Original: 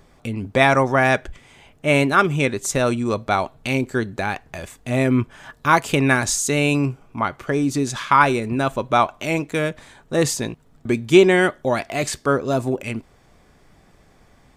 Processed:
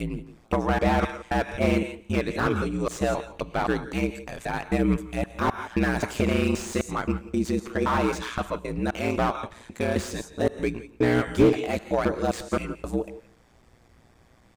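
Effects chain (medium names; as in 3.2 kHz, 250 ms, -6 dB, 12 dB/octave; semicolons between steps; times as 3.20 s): slices played last to first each 262 ms, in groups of 2; ring modulator 59 Hz; delay 173 ms -19.5 dB; on a send at -15.5 dB: reverberation, pre-delay 3 ms; on the sum: slew-rate limiter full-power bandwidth 110 Hz; trim -1.5 dB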